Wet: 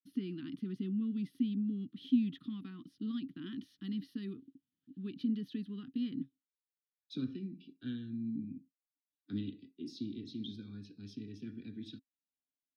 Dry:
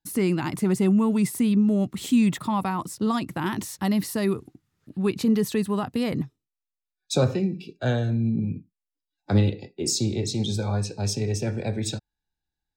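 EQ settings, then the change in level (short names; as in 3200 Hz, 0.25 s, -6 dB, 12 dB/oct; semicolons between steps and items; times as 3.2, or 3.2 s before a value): vowel filter i; fixed phaser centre 2200 Hz, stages 6; -1.0 dB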